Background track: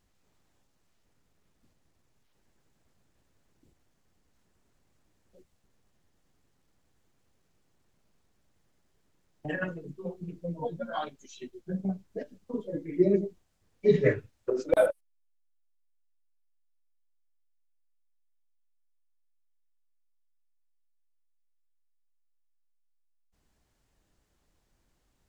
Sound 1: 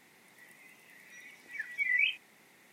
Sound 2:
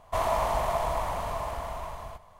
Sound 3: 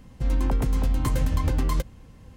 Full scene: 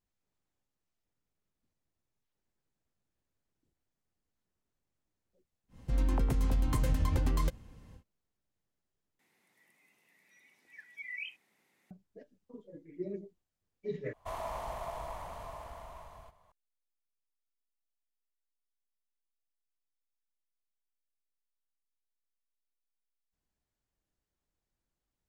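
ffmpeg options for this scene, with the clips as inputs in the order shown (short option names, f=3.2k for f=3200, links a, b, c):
-filter_complex "[0:a]volume=-16dB,asplit=3[a][b][c];[a]atrim=end=9.194[d];[1:a]atrim=end=2.72,asetpts=PTS-STARTPTS,volume=-13dB[e];[b]atrim=start=11.906:end=14.134[f];[2:a]atrim=end=2.39,asetpts=PTS-STARTPTS,volume=-12.5dB[g];[c]atrim=start=16.516[h];[3:a]atrim=end=2.36,asetpts=PTS-STARTPTS,volume=-6dB,afade=t=in:d=0.1,afade=t=out:st=2.26:d=0.1,adelay=5680[i];[d][e]acrossfade=d=0.004:c1=hsin:c2=hsin[j];[j][f]acrossfade=d=0.004:c1=hsin:c2=hsin[k];[k][g]acrossfade=d=0.004:c1=hsin:c2=hsin[l];[l][h]acrossfade=d=0.004:c1=hsin:c2=hsin[m];[m][i]amix=inputs=2:normalize=0"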